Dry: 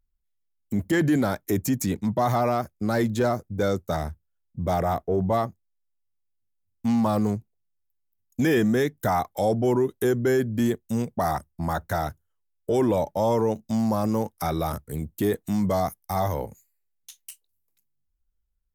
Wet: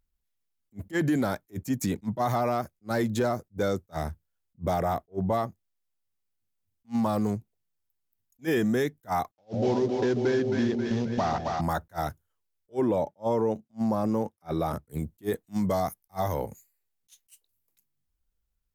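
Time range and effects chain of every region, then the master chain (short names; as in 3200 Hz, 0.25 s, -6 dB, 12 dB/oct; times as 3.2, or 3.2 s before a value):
9.31–11.61 CVSD 32 kbps + gate -42 dBFS, range -51 dB + split-band echo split 580 Hz, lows 0.141 s, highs 0.268 s, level -5.5 dB
12.74–14.86 HPF 290 Hz 6 dB/oct + tilt -2.5 dB/oct
whole clip: low shelf 60 Hz -7.5 dB; compressor 2:1, threshold -30 dBFS; attack slew limiter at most 430 dB/s; gain +3 dB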